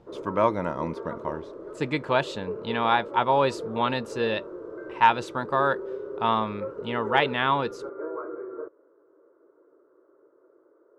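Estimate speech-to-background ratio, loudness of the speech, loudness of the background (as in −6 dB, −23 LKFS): 10.5 dB, −26.5 LKFS, −37.0 LKFS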